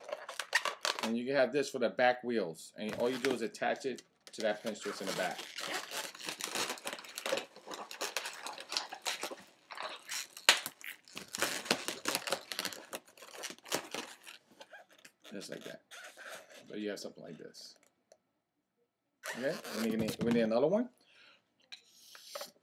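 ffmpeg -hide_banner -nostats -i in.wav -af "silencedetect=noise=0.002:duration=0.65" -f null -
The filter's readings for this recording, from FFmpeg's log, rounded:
silence_start: 18.13
silence_end: 19.23 | silence_duration: 1.11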